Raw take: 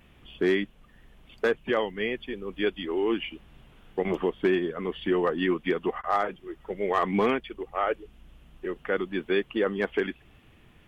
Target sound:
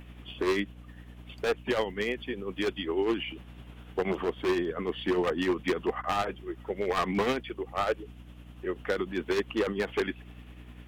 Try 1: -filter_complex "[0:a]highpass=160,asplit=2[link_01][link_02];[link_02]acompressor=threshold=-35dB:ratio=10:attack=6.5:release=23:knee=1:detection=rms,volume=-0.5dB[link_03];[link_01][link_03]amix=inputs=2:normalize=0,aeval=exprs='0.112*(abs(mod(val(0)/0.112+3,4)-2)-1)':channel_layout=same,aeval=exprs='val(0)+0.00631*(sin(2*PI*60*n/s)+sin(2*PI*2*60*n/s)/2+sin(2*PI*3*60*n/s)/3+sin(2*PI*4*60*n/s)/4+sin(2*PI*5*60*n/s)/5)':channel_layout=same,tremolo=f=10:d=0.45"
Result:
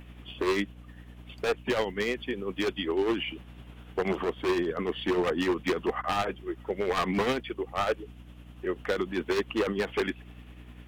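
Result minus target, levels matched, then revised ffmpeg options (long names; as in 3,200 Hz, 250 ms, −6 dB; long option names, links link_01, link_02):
downward compressor: peak gain reduction −8.5 dB
-filter_complex "[0:a]highpass=160,asplit=2[link_01][link_02];[link_02]acompressor=threshold=-44.5dB:ratio=10:attack=6.5:release=23:knee=1:detection=rms,volume=-0.5dB[link_03];[link_01][link_03]amix=inputs=2:normalize=0,aeval=exprs='0.112*(abs(mod(val(0)/0.112+3,4)-2)-1)':channel_layout=same,aeval=exprs='val(0)+0.00631*(sin(2*PI*60*n/s)+sin(2*PI*2*60*n/s)/2+sin(2*PI*3*60*n/s)/3+sin(2*PI*4*60*n/s)/4+sin(2*PI*5*60*n/s)/5)':channel_layout=same,tremolo=f=10:d=0.45"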